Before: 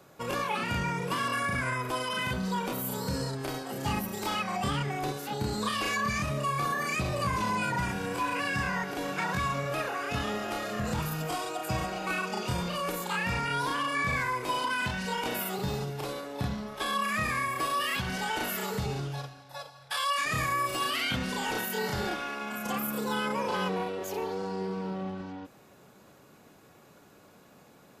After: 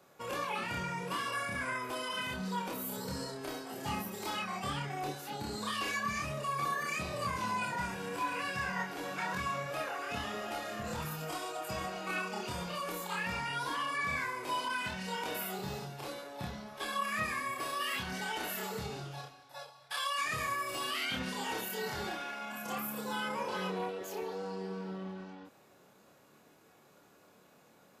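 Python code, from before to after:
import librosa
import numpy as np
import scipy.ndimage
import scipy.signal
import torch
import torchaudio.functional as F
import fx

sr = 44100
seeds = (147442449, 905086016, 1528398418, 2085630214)

y = fx.low_shelf(x, sr, hz=170.0, db=-8.0)
y = fx.doubler(y, sr, ms=27.0, db=-3.0)
y = y * 10.0 ** (-6.5 / 20.0)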